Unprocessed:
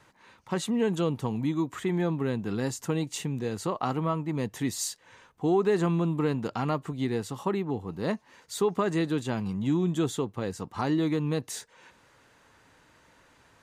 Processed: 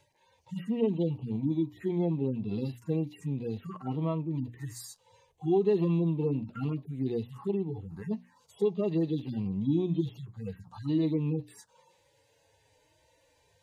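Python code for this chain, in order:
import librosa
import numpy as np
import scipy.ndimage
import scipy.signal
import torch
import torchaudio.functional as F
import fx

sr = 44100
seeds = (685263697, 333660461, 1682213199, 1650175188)

y = fx.hpss_only(x, sr, part='harmonic')
y = fx.hum_notches(y, sr, base_hz=60, count=5)
y = fx.env_phaser(y, sr, low_hz=210.0, high_hz=1500.0, full_db=-29.5)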